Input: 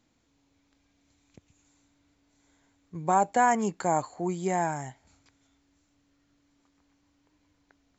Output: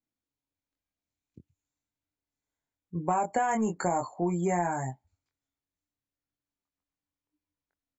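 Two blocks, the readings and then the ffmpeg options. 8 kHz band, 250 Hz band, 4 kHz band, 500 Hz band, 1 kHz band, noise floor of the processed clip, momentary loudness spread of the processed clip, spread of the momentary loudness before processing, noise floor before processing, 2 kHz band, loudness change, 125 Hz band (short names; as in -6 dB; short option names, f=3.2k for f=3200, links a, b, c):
n/a, +0.5 dB, -5.0 dB, -1.5 dB, -3.5 dB, under -85 dBFS, 8 LU, 14 LU, -71 dBFS, -4.0 dB, -2.5 dB, +2.0 dB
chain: -filter_complex "[0:a]asplit=2[a][b];[b]adelay=23,volume=-4dB[c];[a][c]amix=inputs=2:normalize=0,asplit=2[d][e];[e]asoftclip=type=tanh:threshold=-24dB,volume=-7dB[f];[d][f]amix=inputs=2:normalize=0,afftdn=nr=28:nf=-40,alimiter=limit=-13dB:level=0:latency=1:release=204,acompressor=threshold=-24dB:ratio=5"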